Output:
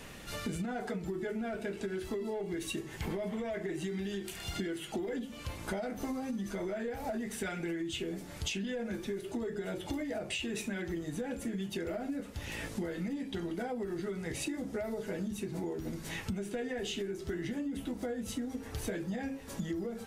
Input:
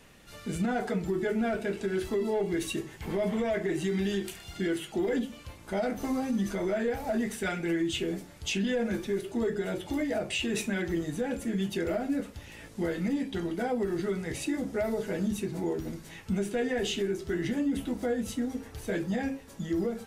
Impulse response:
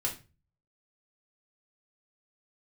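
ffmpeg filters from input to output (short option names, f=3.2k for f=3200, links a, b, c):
-af "acompressor=threshold=-41dB:ratio=16,volume=7.5dB"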